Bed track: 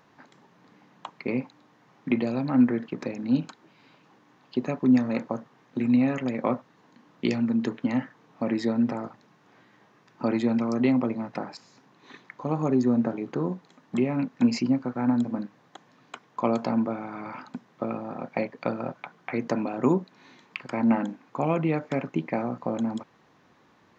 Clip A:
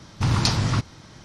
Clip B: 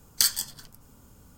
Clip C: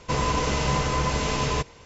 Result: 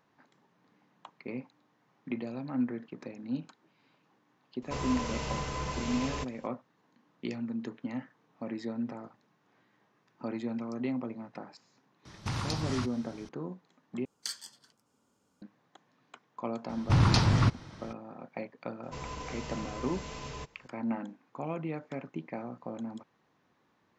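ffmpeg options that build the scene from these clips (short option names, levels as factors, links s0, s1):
-filter_complex "[3:a]asplit=2[s0][s1];[1:a]asplit=2[s2][s3];[0:a]volume=0.282[s4];[s2]acrossover=split=110|560[s5][s6][s7];[s5]acompressor=threshold=0.0178:ratio=4[s8];[s6]acompressor=threshold=0.0282:ratio=4[s9];[s7]acompressor=threshold=0.0316:ratio=4[s10];[s8][s9][s10]amix=inputs=3:normalize=0[s11];[2:a]highpass=240,lowpass=6900[s12];[s3]lowpass=f=2900:p=1[s13];[s4]asplit=2[s14][s15];[s14]atrim=end=14.054[s16];[s12]atrim=end=1.37,asetpts=PTS-STARTPTS,volume=0.224[s17];[s15]atrim=start=15.416[s18];[s0]atrim=end=1.85,asetpts=PTS-STARTPTS,volume=0.282,afade=t=in:d=0.004:c=hsin,afade=t=out:st=1.846:d=0.004:c=hsin,adelay=4620[s19];[s11]atrim=end=1.24,asetpts=PTS-STARTPTS,volume=0.501,afade=t=in:d=0.004:c=hsin,afade=t=out:st=1.236:d=0.004:c=hsin,adelay=12050[s20];[s13]atrim=end=1.24,asetpts=PTS-STARTPTS,volume=0.841,afade=t=in:d=0.004:c=hsin,afade=t=out:st=1.236:d=0.004:c=hsin,adelay=16690[s21];[s1]atrim=end=1.85,asetpts=PTS-STARTPTS,volume=0.15,afade=t=in:d=0.004:c=hsin,afade=t=out:st=1.846:d=0.004:c=hsin,adelay=18830[s22];[s16][s17]acrossfade=d=0.004:c1=hsin:c2=hsin[s23];[s23][s18]acrossfade=d=0.004:c1=hsin:c2=hsin[s24];[s24][s19][s20][s21][s22]amix=inputs=5:normalize=0"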